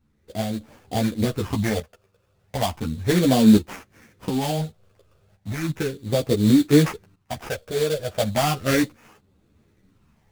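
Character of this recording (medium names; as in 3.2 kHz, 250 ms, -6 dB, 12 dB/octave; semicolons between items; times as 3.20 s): phasing stages 8, 0.35 Hz, lowest notch 250–1600 Hz; aliases and images of a low sample rate 4 kHz, jitter 20%; tremolo saw up 0.56 Hz, depth 75%; a shimmering, thickened sound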